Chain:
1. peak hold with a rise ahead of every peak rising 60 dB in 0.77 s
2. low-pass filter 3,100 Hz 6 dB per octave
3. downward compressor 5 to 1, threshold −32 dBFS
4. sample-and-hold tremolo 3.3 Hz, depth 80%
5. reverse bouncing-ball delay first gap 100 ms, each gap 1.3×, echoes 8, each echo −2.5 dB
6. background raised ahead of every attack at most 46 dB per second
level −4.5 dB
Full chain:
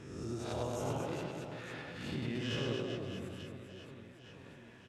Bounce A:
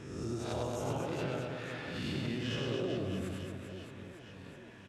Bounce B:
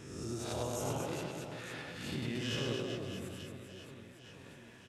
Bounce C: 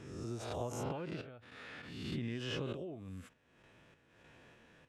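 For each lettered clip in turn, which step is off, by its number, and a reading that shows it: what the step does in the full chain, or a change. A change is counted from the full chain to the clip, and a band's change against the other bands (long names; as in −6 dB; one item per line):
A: 4, change in crest factor −2.5 dB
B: 2, 8 kHz band +7.0 dB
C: 5, change in momentary loudness spread +4 LU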